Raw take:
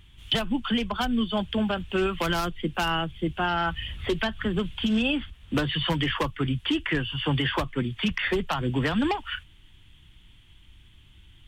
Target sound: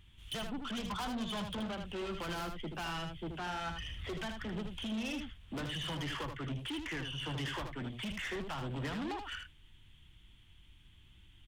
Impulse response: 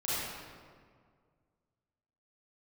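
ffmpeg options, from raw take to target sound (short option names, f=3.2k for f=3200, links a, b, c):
-filter_complex "[0:a]asettb=1/sr,asplit=3[a][b][c];[a]atrim=end=0.774[d];[b]atrim=start=0.77:end=1.67,asetpts=PTS-STARTPTS,afade=t=in:d=0.004:c=qsin,afade=t=out:st=0.896:d=0.004:c=qsin,equalizer=f=125:t=o:w=1:g=9,equalizer=f=1k:t=o:w=1:g=11,equalizer=f=2k:t=o:w=1:g=-4,equalizer=f=4k:t=o:w=1:g=10[e];[c]atrim=start=1.666[f];[d][e]acrossfade=d=0.004:c1=hsin:c2=qsin[g];[g][f]acrossfade=d=0.004:c1=qsin:c2=hsin,asoftclip=type=tanh:threshold=-29dB,aecho=1:1:78:0.501,volume=-7.5dB"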